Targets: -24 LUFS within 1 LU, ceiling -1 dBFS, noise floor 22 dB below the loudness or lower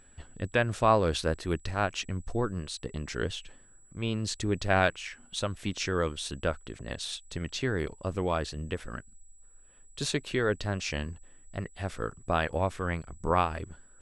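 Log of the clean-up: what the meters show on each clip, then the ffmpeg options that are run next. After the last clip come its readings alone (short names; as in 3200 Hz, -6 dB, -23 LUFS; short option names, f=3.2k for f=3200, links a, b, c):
steady tone 7800 Hz; tone level -59 dBFS; loudness -31.5 LUFS; peak -10.0 dBFS; loudness target -24.0 LUFS
-> -af "bandreject=f=7.8k:w=30"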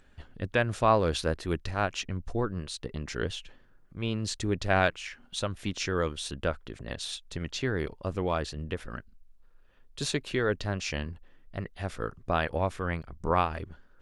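steady tone none; loudness -31.5 LUFS; peak -10.0 dBFS; loudness target -24.0 LUFS
-> -af "volume=7.5dB"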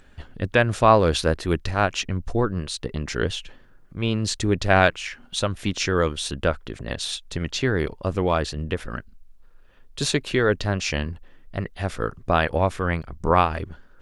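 loudness -24.0 LUFS; peak -2.5 dBFS; noise floor -50 dBFS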